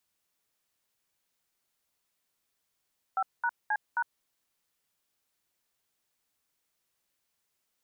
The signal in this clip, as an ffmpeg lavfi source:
-f lavfi -i "aevalsrc='0.0398*clip(min(mod(t,0.266),0.057-mod(t,0.266))/0.002,0,1)*(eq(floor(t/0.266),0)*(sin(2*PI*770*mod(t,0.266))+sin(2*PI*1336*mod(t,0.266)))+eq(floor(t/0.266),1)*(sin(2*PI*941*mod(t,0.266))+sin(2*PI*1477*mod(t,0.266)))+eq(floor(t/0.266),2)*(sin(2*PI*852*mod(t,0.266))+sin(2*PI*1633*mod(t,0.266)))+eq(floor(t/0.266),3)*(sin(2*PI*941*mod(t,0.266))+sin(2*PI*1477*mod(t,0.266))))':d=1.064:s=44100"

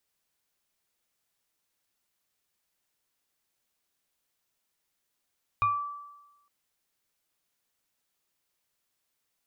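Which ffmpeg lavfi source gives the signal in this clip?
-f lavfi -i "aevalsrc='0.1*pow(10,-3*t/1.07)*sin(2*PI*1160*t+0.55*pow(10,-3*t/0.38)*sin(2*PI*1.09*1160*t))':d=0.86:s=44100"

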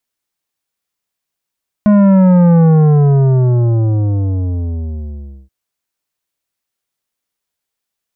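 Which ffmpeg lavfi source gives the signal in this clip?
-f lavfi -i "aevalsrc='0.473*clip((3.63-t)/2.86,0,1)*tanh(3.55*sin(2*PI*210*3.63/log(65/210)*(exp(log(65/210)*t/3.63)-1)))/tanh(3.55)':d=3.63:s=44100"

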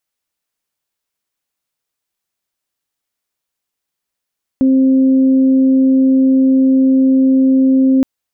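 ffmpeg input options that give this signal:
-f lavfi -i "aevalsrc='0.422*sin(2*PI*264*t)+0.0668*sin(2*PI*528*t)':d=3.42:s=44100"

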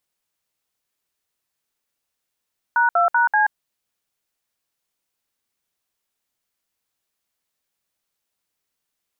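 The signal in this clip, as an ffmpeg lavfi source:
-f lavfi -i "aevalsrc='0.15*clip(min(mod(t,0.192),0.13-mod(t,0.192))/0.002,0,1)*(eq(floor(t/0.192),0)*(sin(2*PI*941*mod(t,0.192))+sin(2*PI*1477*mod(t,0.192)))+eq(floor(t/0.192),1)*(sin(2*PI*697*mod(t,0.192))+sin(2*PI*1336*mod(t,0.192)))+eq(floor(t/0.192),2)*(sin(2*PI*941*mod(t,0.192))+sin(2*PI*1477*mod(t,0.192)))+eq(floor(t/0.192),3)*(sin(2*PI*852*mod(t,0.192))+sin(2*PI*1633*mod(t,0.192))))':d=0.768:s=44100"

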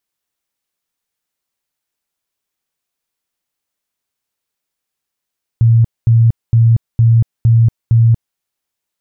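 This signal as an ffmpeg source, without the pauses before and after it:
-f lavfi -i "aevalsrc='0.531*sin(2*PI*115*mod(t,0.46))*lt(mod(t,0.46),27/115)':d=2.76:s=44100"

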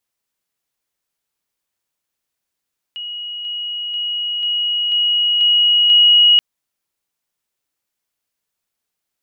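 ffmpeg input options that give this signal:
-f lavfi -i "aevalsrc='pow(10,(-25+3*floor(t/0.49))/20)*sin(2*PI*2900*t)':d=3.43:s=44100"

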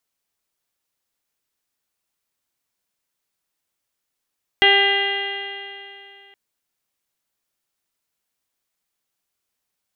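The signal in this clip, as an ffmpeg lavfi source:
-f lavfi -i "aevalsrc='0.112*pow(10,-3*t/2.73)*sin(2*PI*396.13*t)+0.112*pow(10,-3*t/2.73)*sin(2*PI*793.04*t)+0.02*pow(10,-3*t/2.73)*sin(2*PI*1191.52*t)+0.0708*pow(10,-3*t/2.73)*sin(2*PI*1592.34*t)+0.211*pow(10,-3*t/2.73)*sin(2*PI*1996.27*t)+0.0376*pow(10,-3*t/2.73)*sin(2*PI*2404.06*t)+0.158*pow(10,-3*t/2.73)*sin(2*PI*2816.47*t)+0.126*pow(10,-3*t/2.73)*sin(2*PI*3234.22*t)+0.015*pow(10,-3*t/2.73)*sin(2*PI*3658.03*t)+0.0141*pow(10,-3*t/2.73)*sin(2*PI*4088.59*t)':d=1.72:s=44100"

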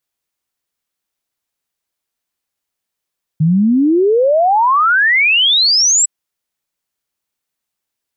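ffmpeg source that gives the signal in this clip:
-f lavfi -i "aevalsrc='0.376*clip(min(t,2.66-t)/0.01,0,1)*sin(2*PI*150*2.66/log(7900/150)*(exp(log(7900/150)*t/2.66)-1))':d=2.66:s=44100"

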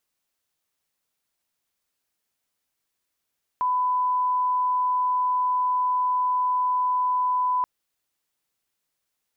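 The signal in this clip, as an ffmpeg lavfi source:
-f lavfi -i "sine=f=1000:d=4.03:r=44100,volume=-1.94dB"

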